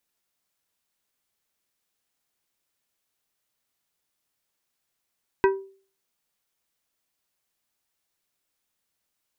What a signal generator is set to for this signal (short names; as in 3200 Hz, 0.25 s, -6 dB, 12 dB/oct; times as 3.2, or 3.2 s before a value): glass hit plate, lowest mode 388 Hz, decay 0.43 s, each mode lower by 4.5 dB, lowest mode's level -13.5 dB